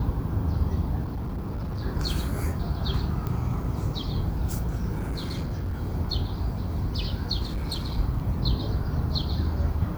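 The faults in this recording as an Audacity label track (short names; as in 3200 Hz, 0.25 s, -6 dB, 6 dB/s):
1.030000	1.830000	clipped -28 dBFS
3.270000	3.270000	pop -18 dBFS
4.980000	5.760000	clipped -26 dBFS
7.430000	7.980000	clipped -25.5 dBFS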